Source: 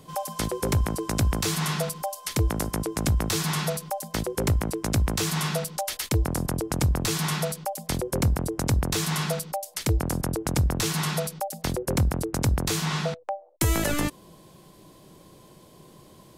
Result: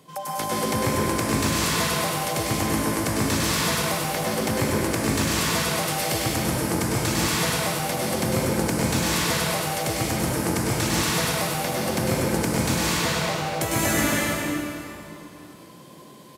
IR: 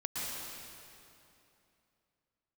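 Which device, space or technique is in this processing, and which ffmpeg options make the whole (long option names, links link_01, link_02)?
PA in a hall: -filter_complex "[0:a]highpass=150,equalizer=frequency=2100:width_type=o:width=0.9:gain=3.5,aecho=1:1:101:0.531[link_01];[1:a]atrim=start_sample=2205[link_02];[link_01][link_02]afir=irnorm=-1:irlink=0"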